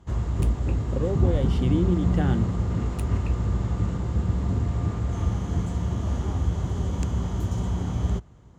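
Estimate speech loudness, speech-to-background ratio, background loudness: −29.0 LKFS, −2.5 dB, −26.5 LKFS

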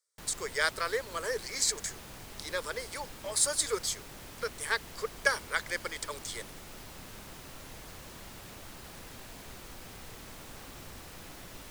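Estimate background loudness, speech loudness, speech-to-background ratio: −46.5 LKFS, −32.5 LKFS, 14.0 dB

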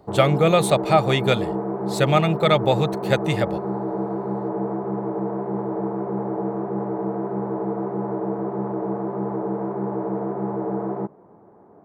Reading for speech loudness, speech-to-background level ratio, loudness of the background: −20.5 LKFS, 6.5 dB, −27.0 LKFS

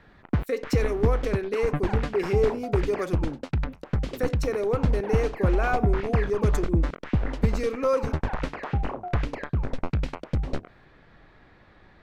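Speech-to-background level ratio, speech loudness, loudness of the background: 0.5 dB, −28.5 LKFS, −29.0 LKFS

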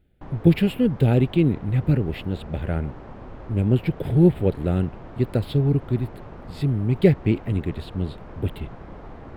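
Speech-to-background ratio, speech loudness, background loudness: 19.0 dB, −22.5 LKFS, −41.5 LKFS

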